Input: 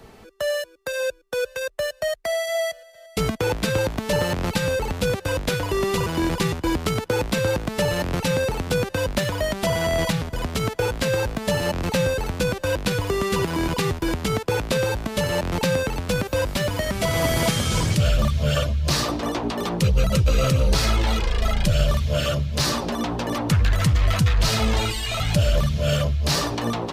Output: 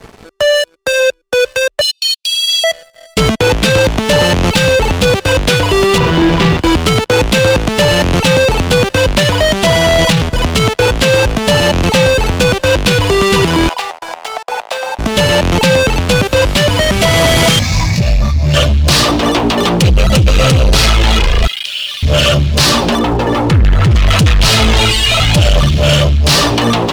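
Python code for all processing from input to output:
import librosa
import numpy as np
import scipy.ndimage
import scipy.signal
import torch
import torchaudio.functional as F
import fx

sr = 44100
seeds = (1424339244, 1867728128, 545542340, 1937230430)

y = fx.chain(x, sr, fx.brickwall_highpass(low_hz=2400.0),
    fx.peak_eq(hz=4200.0, db=9.5, octaves=0.56),
    fx.comb(ms=6.0, depth=0.41), at=(1.81, 2.64))
y = fx.chain(y, sr, fx.doubler(ms=42.0, db=-3),
    fx.sample_gate(floor_db=-32.0),
    fx.air_absorb(metres=180.0), at=(5.98, 6.59))
y = fx.chain(y, sr, fx.ladder_highpass(hz=670.0, resonance_pct=65),
    fx.high_shelf(hz=9400.0, db=-4.5), at=(13.69, 14.99))
y = fx.chain(y, sr, fx.fixed_phaser(hz=2100.0, stages=8),
    fx.detune_double(cents=11), at=(17.59, 18.54))
y = fx.chain(y, sr, fx.ladder_bandpass(hz=3600.0, resonance_pct=40),
    fx.env_flatten(amount_pct=70), at=(21.47, 22.03))
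y = fx.chain(y, sr, fx.lowpass(hz=1400.0, slope=6),
    fx.comb(ms=2.3, depth=0.39), at=(22.99, 23.91))
y = scipy.signal.sosfilt(scipy.signal.butter(2, 11000.0, 'lowpass', fs=sr, output='sos'), y)
y = fx.dynamic_eq(y, sr, hz=3000.0, q=1.7, threshold_db=-44.0, ratio=4.0, max_db=6)
y = fx.leveller(y, sr, passes=3)
y = F.gain(torch.from_numpy(y), 3.5).numpy()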